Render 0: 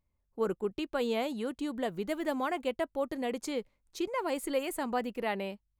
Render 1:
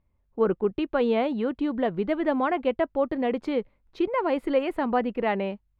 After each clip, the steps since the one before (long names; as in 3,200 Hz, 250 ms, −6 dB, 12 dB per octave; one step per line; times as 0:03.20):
high-frequency loss of the air 390 metres
level +9 dB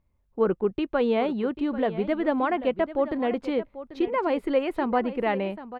single-tap delay 790 ms −14 dB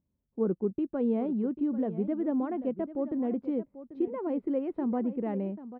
resonant band-pass 220 Hz, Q 1.3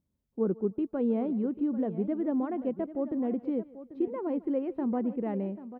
feedback echo with a high-pass in the loop 151 ms, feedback 30%, high-pass 280 Hz, level −20 dB